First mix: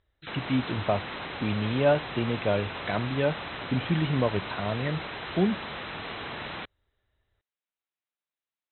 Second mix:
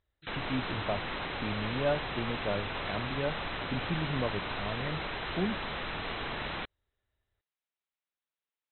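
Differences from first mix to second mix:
speech −7.5 dB
background: remove high-pass filter 76 Hz

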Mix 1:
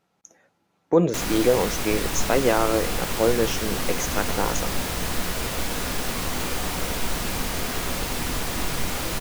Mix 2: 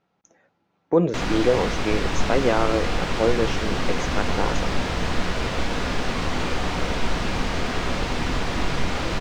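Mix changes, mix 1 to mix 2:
background +4.0 dB
master: add high-frequency loss of the air 140 metres

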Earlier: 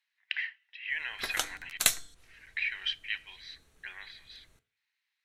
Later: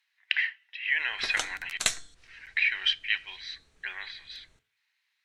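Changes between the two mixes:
speech +7.0 dB
background: add low-pass filter 8,800 Hz 24 dB per octave

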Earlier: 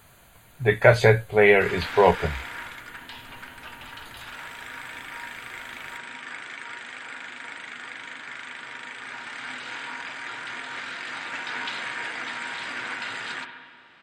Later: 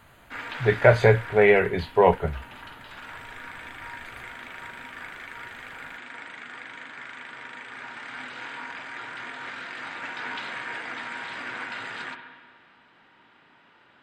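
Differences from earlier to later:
background: entry −1.30 s
master: add high-shelf EQ 3,200 Hz −9.5 dB

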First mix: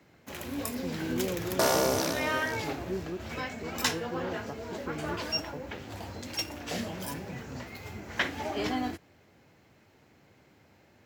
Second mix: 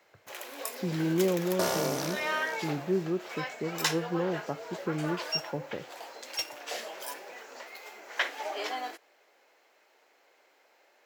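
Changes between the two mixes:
speech +7.0 dB
first sound: add high-pass filter 460 Hz 24 dB per octave
second sound −4.5 dB

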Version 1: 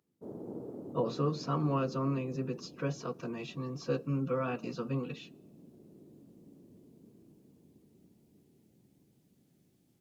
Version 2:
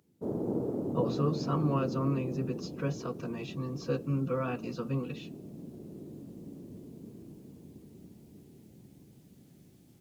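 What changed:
background +9.5 dB
master: add parametric band 63 Hz +4.5 dB 2.5 octaves

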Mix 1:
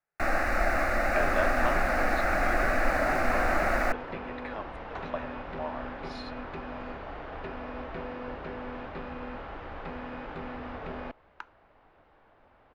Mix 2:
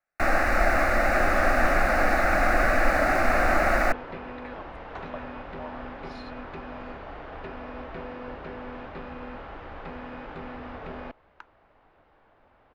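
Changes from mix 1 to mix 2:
speech −3.0 dB
first sound +4.5 dB
reverb: off

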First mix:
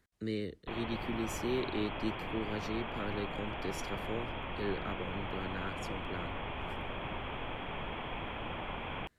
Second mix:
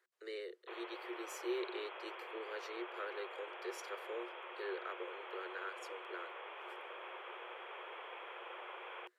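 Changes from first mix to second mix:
background −4.0 dB
master: add Chebyshev high-pass with heavy ripple 350 Hz, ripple 6 dB

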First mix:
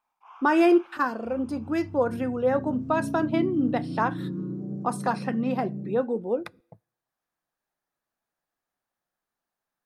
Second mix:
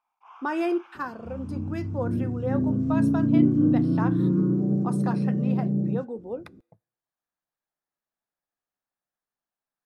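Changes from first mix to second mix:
speech −7.0 dB
second sound +10.0 dB

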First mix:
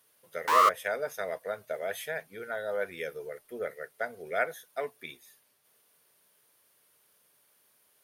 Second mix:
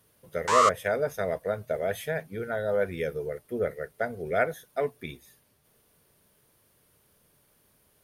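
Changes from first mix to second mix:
speech: remove high-pass filter 930 Hz 6 dB per octave
background: add low-pass with resonance 7,400 Hz, resonance Q 3.1

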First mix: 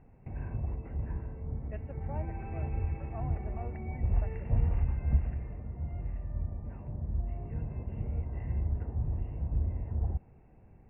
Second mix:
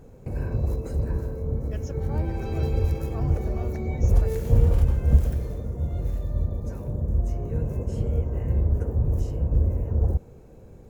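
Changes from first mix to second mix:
background: add parametric band 510 Hz +14 dB 0.87 octaves
master: remove Chebyshev low-pass with heavy ripple 2,800 Hz, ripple 9 dB

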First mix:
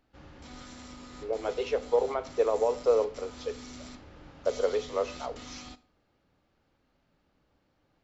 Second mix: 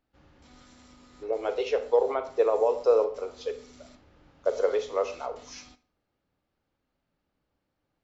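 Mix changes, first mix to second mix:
speech: send +9.0 dB
background −8.0 dB

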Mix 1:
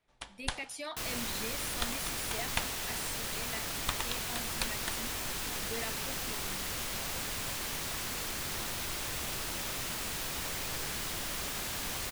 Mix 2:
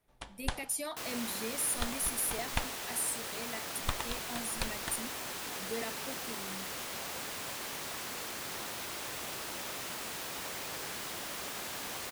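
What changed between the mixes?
speech: remove low-pass filter 4,500 Hz 12 dB per octave
second sound: add high-pass filter 510 Hz 6 dB per octave
master: add tilt shelving filter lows +4 dB, about 1,100 Hz

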